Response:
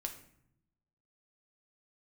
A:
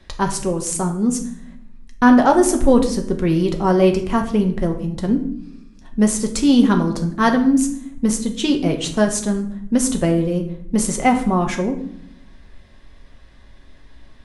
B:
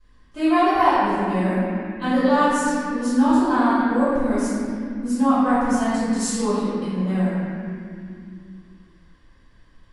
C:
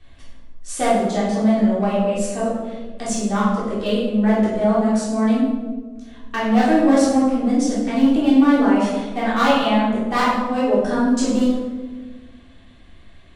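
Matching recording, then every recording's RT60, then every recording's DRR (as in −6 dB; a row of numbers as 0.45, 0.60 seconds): A; 0.70, 2.6, 1.4 seconds; 3.5, −18.0, −8.5 decibels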